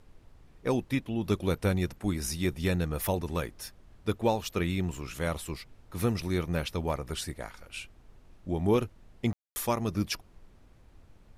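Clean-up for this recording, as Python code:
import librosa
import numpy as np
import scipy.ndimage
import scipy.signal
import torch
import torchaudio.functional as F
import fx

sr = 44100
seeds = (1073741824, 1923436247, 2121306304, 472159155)

y = fx.fix_ambience(x, sr, seeds[0], print_start_s=10.45, print_end_s=10.95, start_s=9.33, end_s=9.56)
y = fx.noise_reduce(y, sr, print_start_s=10.45, print_end_s=10.95, reduce_db=19.0)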